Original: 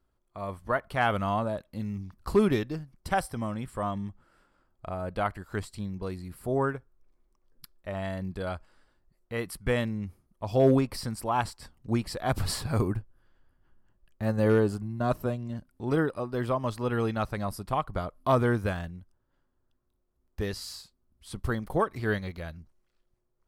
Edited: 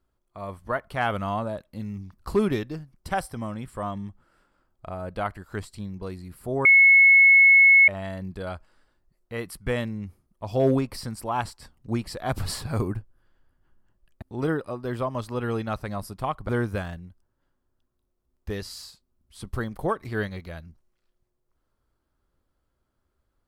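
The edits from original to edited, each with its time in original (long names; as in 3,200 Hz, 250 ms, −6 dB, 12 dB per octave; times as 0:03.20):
0:06.65–0:07.88: beep over 2,190 Hz −11 dBFS
0:14.22–0:15.71: remove
0:17.98–0:18.40: remove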